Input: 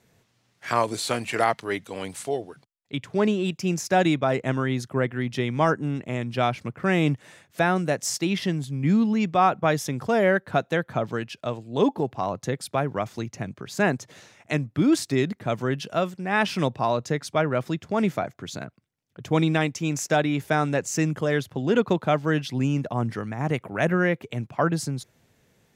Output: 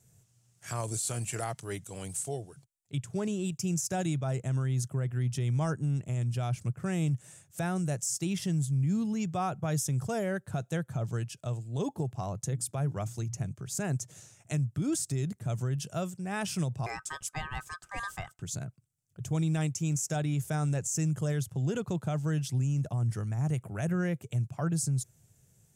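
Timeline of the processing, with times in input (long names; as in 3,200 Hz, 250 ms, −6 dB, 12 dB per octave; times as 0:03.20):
0:12.47–0:13.45: mains-hum notches 60/120/180/240/300 Hz
0:16.86–0:18.42: ring modulation 1,400 Hz
whole clip: octave-band graphic EQ 125/250/500/1,000/2,000/4,000/8,000 Hz +7/−11/−7/−9/−11/−10/+10 dB; brickwall limiter −23 dBFS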